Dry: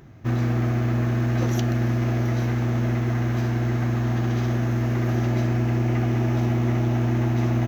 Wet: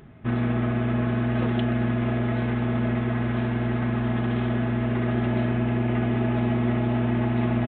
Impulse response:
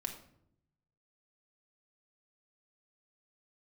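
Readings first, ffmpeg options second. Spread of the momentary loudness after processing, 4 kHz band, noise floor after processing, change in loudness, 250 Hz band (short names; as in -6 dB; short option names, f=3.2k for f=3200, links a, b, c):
2 LU, -1.0 dB, -26 dBFS, -1.5 dB, +1.5 dB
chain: -af "aecho=1:1:4.7:0.45,aresample=8000,aresample=44100"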